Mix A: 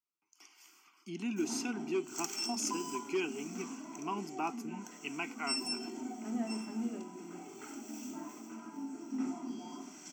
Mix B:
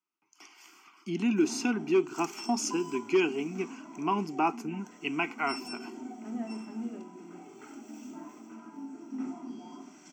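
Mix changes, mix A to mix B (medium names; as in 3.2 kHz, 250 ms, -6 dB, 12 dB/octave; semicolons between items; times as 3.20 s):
speech +9.5 dB; master: add treble shelf 5.1 kHz -11 dB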